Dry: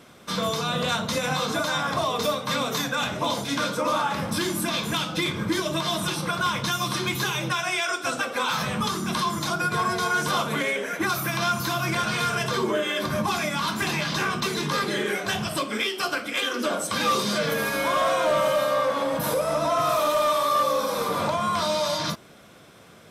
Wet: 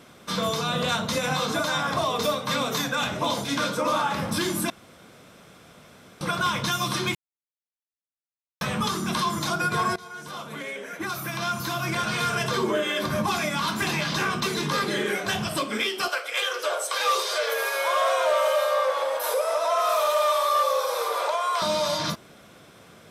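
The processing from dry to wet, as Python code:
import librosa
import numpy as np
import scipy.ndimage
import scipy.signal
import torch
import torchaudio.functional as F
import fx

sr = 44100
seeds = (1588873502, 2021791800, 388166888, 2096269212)

y = fx.steep_highpass(x, sr, hz=420.0, slope=48, at=(16.08, 21.62))
y = fx.edit(y, sr, fx.room_tone_fill(start_s=4.7, length_s=1.51),
    fx.silence(start_s=7.15, length_s=1.46),
    fx.fade_in_from(start_s=9.96, length_s=2.47, floor_db=-20.0), tone=tone)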